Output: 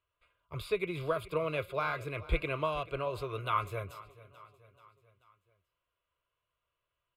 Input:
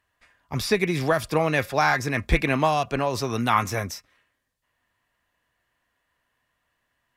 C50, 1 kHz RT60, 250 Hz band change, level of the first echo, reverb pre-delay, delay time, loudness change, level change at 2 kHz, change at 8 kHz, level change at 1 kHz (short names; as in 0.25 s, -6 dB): none, none, -16.0 dB, -19.0 dB, none, 0.435 s, -11.0 dB, -13.5 dB, -22.5 dB, -11.5 dB